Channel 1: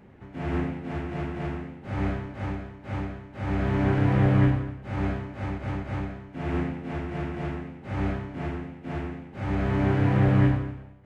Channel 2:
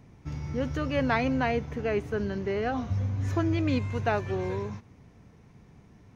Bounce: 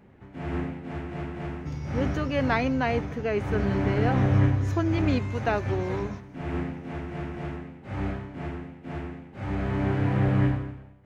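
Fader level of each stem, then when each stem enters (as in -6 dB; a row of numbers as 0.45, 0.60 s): -2.5, +1.0 dB; 0.00, 1.40 s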